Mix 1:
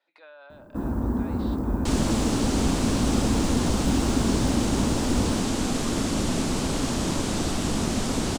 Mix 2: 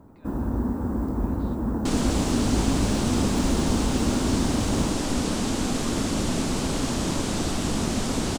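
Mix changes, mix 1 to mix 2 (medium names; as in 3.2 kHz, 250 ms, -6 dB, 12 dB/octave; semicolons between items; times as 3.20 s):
speech -10.0 dB; first sound: entry -0.50 s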